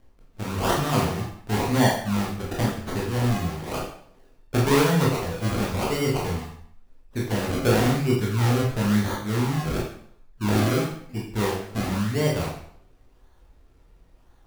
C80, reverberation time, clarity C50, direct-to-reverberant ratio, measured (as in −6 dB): 6.5 dB, 0.65 s, 3.5 dB, −4.0 dB